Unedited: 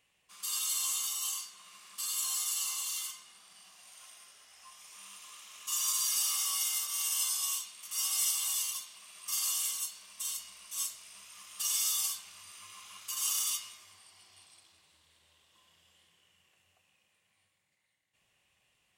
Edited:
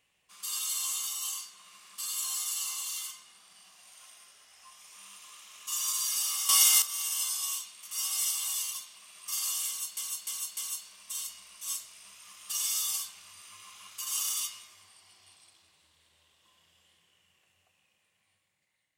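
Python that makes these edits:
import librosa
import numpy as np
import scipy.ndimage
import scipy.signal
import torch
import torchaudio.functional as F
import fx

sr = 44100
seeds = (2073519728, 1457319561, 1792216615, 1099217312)

y = fx.edit(x, sr, fx.clip_gain(start_s=6.49, length_s=0.33, db=11.0),
    fx.repeat(start_s=9.67, length_s=0.3, count=4), tone=tone)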